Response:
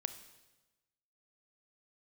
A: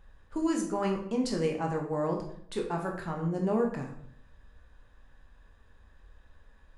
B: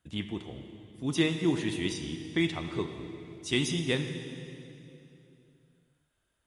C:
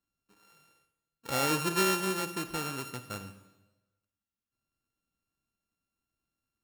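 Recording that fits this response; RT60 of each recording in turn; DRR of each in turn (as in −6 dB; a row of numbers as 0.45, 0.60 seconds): C; 0.65, 2.8, 1.1 seconds; 1.0, 6.5, 10.5 decibels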